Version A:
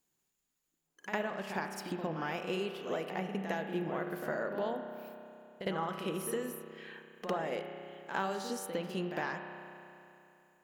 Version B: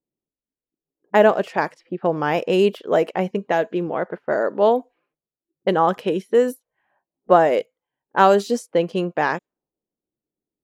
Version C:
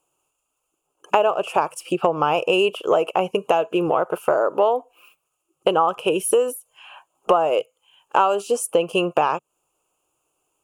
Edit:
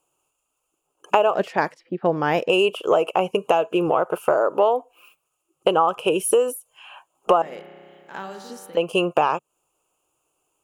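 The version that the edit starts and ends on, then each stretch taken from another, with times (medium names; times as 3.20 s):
C
1.35–2.49 s: from B
7.42–8.77 s: from A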